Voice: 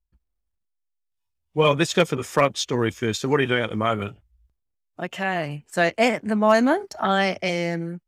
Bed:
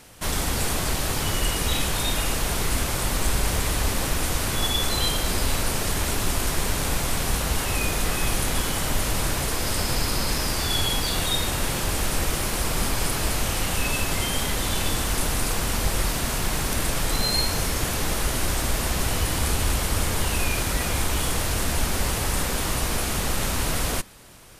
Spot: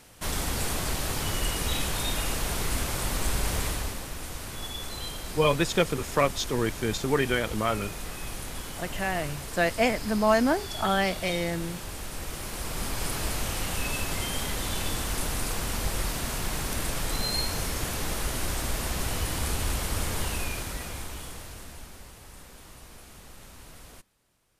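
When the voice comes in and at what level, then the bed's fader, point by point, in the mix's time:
3.80 s, −4.5 dB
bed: 0:03.65 −4.5 dB
0:04.05 −12.5 dB
0:12.11 −12.5 dB
0:13.13 −5.5 dB
0:20.24 −5.5 dB
0:22.11 −23 dB

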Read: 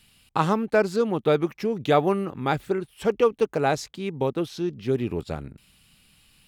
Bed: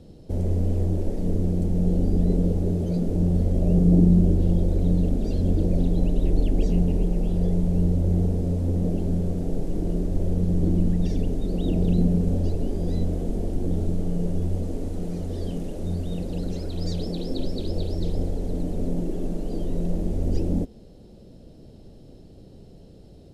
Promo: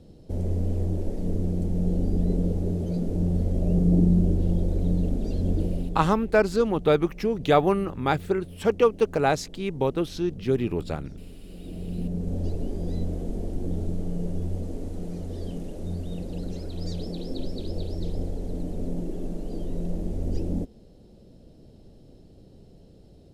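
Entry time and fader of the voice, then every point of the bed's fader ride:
5.60 s, +0.5 dB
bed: 0:05.60 −3 dB
0:06.32 −18.5 dB
0:11.42 −18.5 dB
0:12.47 −4 dB

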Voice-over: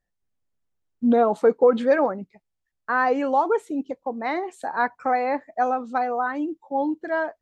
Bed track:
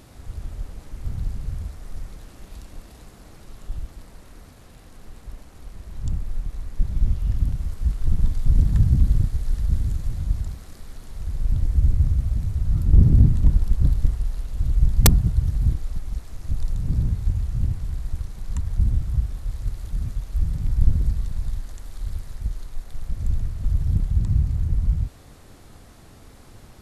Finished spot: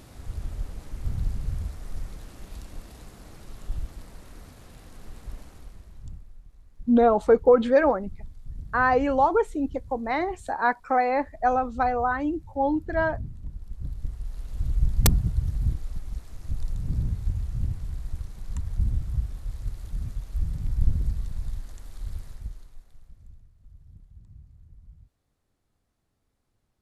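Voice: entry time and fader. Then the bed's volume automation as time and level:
5.85 s, 0.0 dB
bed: 0:05.48 −0.5 dB
0:06.38 −21 dB
0:13.51 −21 dB
0:14.52 −5 dB
0:22.26 −5 dB
0:23.46 −29 dB

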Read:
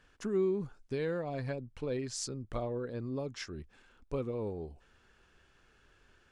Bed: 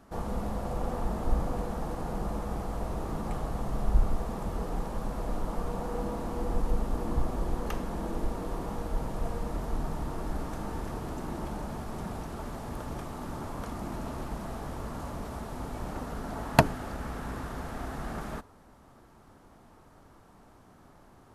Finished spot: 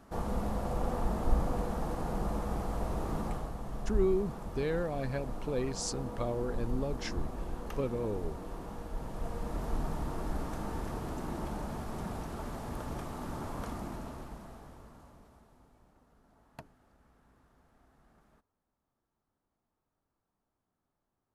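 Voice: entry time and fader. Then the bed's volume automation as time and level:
3.65 s, +1.5 dB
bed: 0:03.22 −0.5 dB
0:03.57 −7.5 dB
0:08.93 −7.5 dB
0:09.67 −1.5 dB
0:13.70 −1.5 dB
0:15.95 −29 dB

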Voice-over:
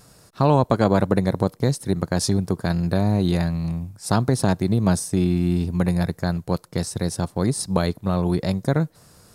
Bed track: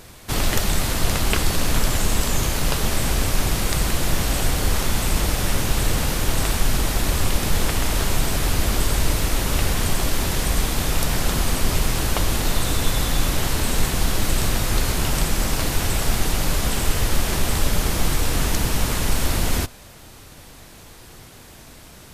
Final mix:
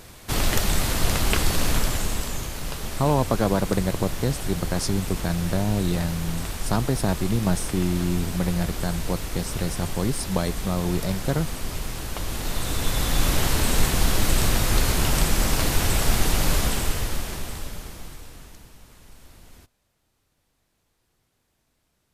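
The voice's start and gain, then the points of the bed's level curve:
2.60 s, −4.0 dB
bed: 0:01.68 −1.5 dB
0:02.49 −10 dB
0:12.09 −10 dB
0:13.31 0 dB
0:16.57 0 dB
0:18.79 −28 dB

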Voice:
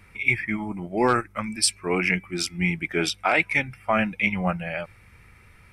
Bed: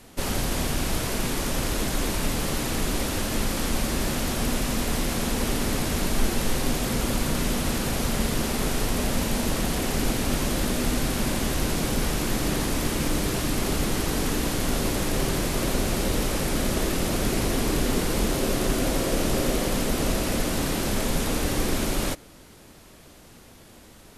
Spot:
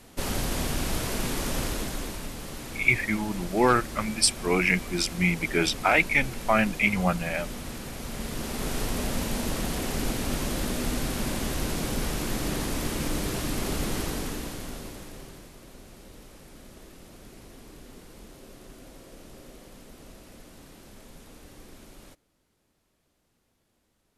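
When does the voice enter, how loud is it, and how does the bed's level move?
2.60 s, 0.0 dB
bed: 0:01.61 −2.5 dB
0:02.32 −11.5 dB
0:07.98 −11.5 dB
0:08.77 −4 dB
0:14.01 −4 dB
0:15.59 −23.5 dB

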